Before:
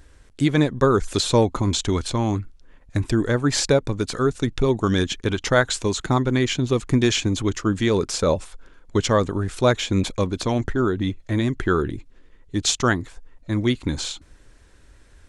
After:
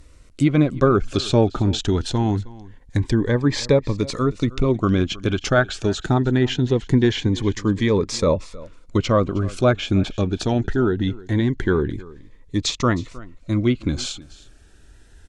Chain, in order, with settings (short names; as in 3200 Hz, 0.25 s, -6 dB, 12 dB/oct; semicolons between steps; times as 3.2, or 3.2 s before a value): treble ducked by the level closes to 2600 Hz, closed at -15.5 dBFS; on a send: echo 0.314 s -20.5 dB; on the sum: cascading phaser rising 0.23 Hz; gain +2.5 dB